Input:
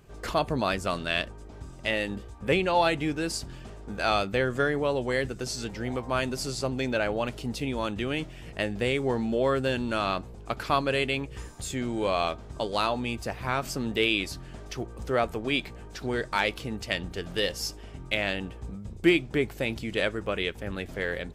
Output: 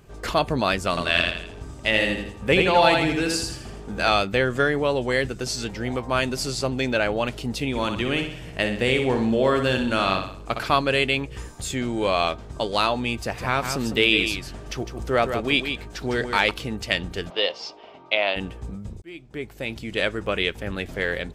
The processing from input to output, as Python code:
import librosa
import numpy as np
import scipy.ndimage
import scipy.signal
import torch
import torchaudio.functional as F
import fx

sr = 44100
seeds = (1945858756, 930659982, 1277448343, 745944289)

y = fx.echo_feedback(x, sr, ms=82, feedback_pct=42, wet_db=-3.5, at=(0.89, 4.09))
y = fx.echo_feedback(y, sr, ms=62, feedback_pct=46, wet_db=-7, at=(7.69, 10.68))
y = fx.echo_single(y, sr, ms=156, db=-7.5, at=(13.19, 16.51))
y = fx.cabinet(y, sr, low_hz=430.0, low_slope=12, high_hz=4300.0, hz=(660.0, 980.0, 1700.0), db=(7, 6, -8), at=(17.29, 18.35), fade=0.02)
y = fx.edit(y, sr, fx.fade_in_span(start_s=19.02, length_s=1.26), tone=tone)
y = fx.dynamic_eq(y, sr, hz=3000.0, q=0.74, threshold_db=-42.0, ratio=4.0, max_db=3)
y = y * 10.0 ** (4.0 / 20.0)